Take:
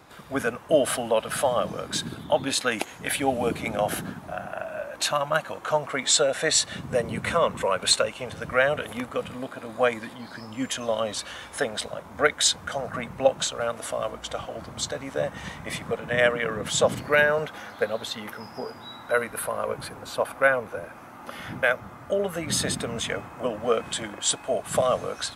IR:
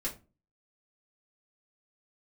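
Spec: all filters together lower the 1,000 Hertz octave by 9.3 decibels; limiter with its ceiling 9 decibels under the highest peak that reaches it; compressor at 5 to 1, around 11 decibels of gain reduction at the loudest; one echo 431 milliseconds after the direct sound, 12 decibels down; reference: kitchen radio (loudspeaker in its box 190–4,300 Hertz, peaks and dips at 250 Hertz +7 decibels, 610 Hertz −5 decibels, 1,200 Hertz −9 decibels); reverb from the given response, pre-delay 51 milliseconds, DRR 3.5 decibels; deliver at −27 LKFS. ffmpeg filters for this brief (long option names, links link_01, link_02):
-filter_complex "[0:a]equalizer=frequency=1000:width_type=o:gain=-8.5,acompressor=threshold=-29dB:ratio=5,alimiter=level_in=0.5dB:limit=-24dB:level=0:latency=1,volume=-0.5dB,aecho=1:1:431:0.251,asplit=2[link_01][link_02];[1:a]atrim=start_sample=2205,adelay=51[link_03];[link_02][link_03]afir=irnorm=-1:irlink=0,volume=-6dB[link_04];[link_01][link_04]amix=inputs=2:normalize=0,highpass=190,equalizer=frequency=250:width_type=q:width=4:gain=7,equalizer=frequency=610:width_type=q:width=4:gain=-5,equalizer=frequency=1200:width_type=q:width=4:gain=-9,lowpass=frequency=4300:width=0.5412,lowpass=frequency=4300:width=1.3066,volume=8.5dB"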